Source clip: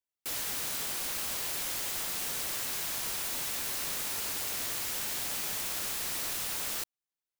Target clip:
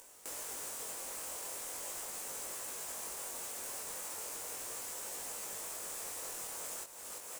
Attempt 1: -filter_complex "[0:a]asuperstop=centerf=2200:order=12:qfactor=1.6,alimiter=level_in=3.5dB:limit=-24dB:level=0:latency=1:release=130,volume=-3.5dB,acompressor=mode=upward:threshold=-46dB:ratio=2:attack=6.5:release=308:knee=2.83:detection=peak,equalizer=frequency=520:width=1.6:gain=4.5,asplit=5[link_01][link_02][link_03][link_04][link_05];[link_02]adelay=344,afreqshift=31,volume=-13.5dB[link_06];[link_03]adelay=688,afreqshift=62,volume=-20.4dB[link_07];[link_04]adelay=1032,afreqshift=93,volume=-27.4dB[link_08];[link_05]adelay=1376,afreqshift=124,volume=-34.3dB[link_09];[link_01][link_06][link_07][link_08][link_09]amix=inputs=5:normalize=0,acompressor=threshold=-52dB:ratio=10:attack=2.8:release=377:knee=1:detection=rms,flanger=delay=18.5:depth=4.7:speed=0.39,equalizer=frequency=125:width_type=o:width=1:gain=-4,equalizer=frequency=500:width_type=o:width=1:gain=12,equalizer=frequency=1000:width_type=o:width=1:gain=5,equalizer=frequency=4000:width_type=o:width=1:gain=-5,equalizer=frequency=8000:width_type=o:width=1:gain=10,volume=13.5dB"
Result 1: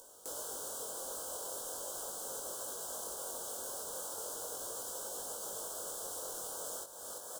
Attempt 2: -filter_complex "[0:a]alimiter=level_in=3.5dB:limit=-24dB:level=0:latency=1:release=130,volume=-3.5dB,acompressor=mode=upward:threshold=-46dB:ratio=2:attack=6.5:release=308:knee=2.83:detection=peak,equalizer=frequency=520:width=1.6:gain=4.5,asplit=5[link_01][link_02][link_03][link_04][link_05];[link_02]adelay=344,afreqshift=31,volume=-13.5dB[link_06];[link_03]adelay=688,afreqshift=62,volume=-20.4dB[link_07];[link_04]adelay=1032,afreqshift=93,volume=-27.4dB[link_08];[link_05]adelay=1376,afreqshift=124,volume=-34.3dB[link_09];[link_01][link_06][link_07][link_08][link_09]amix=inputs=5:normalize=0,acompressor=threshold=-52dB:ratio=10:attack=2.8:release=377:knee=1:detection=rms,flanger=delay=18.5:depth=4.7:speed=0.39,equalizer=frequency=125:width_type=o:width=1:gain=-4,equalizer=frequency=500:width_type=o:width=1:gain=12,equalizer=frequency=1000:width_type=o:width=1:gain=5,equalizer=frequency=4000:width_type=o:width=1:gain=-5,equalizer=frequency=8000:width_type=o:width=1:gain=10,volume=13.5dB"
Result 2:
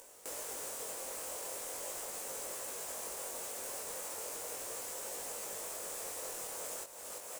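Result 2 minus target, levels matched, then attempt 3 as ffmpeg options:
500 Hz band +5.0 dB
-filter_complex "[0:a]alimiter=level_in=3.5dB:limit=-24dB:level=0:latency=1:release=130,volume=-3.5dB,acompressor=mode=upward:threshold=-46dB:ratio=2:attack=6.5:release=308:knee=2.83:detection=peak,equalizer=frequency=520:width=1.6:gain=-2,asplit=5[link_01][link_02][link_03][link_04][link_05];[link_02]adelay=344,afreqshift=31,volume=-13.5dB[link_06];[link_03]adelay=688,afreqshift=62,volume=-20.4dB[link_07];[link_04]adelay=1032,afreqshift=93,volume=-27.4dB[link_08];[link_05]adelay=1376,afreqshift=124,volume=-34.3dB[link_09];[link_01][link_06][link_07][link_08][link_09]amix=inputs=5:normalize=0,acompressor=threshold=-52dB:ratio=10:attack=2.8:release=377:knee=1:detection=rms,flanger=delay=18.5:depth=4.7:speed=0.39,equalizer=frequency=125:width_type=o:width=1:gain=-4,equalizer=frequency=500:width_type=o:width=1:gain=12,equalizer=frequency=1000:width_type=o:width=1:gain=5,equalizer=frequency=4000:width_type=o:width=1:gain=-5,equalizer=frequency=8000:width_type=o:width=1:gain=10,volume=13.5dB"

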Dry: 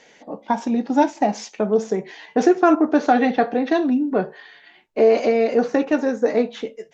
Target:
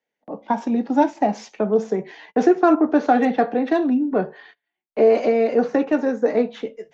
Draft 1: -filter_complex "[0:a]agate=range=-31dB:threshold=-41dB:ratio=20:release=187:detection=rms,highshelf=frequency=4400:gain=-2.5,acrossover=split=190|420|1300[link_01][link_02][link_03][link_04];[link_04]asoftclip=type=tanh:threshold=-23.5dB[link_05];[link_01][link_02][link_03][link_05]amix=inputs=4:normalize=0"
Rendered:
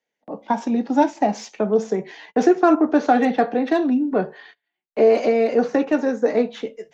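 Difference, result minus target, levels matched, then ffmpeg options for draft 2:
8,000 Hz band +5.0 dB
-filter_complex "[0:a]agate=range=-31dB:threshold=-41dB:ratio=20:release=187:detection=rms,highshelf=frequency=4400:gain=-10.5,acrossover=split=190|420|1300[link_01][link_02][link_03][link_04];[link_04]asoftclip=type=tanh:threshold=-23.5dB[link_05];[link_01][link_02][link_03][link_05]amix=inputs=4:normalize=0"

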